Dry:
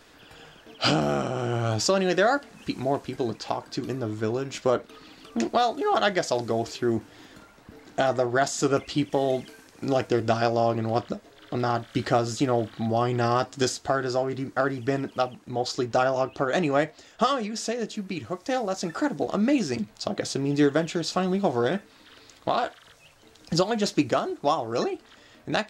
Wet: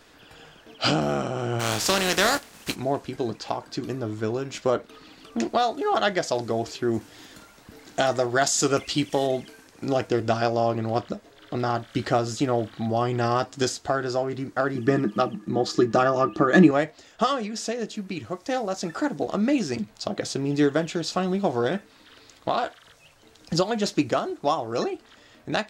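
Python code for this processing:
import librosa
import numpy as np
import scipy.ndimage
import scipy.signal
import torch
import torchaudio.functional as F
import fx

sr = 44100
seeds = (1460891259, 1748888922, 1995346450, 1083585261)

y = fx.spec_flatten(x, sr, power=0.47, at=(1.59, 2.74), fade=0.02)
y = fx.high_shelf(y, sr, hz=fx.line((6.93, 3600.0), (9.26, 2300.0)), db=9.0, at=(6.93, 9.26), fade=0.02)
y = fx.small_body(y, sr, hz=(200.0, 320.0, 1200.0, 1700.0), ring_ms=90, db=17, at=(14.75, 16.71))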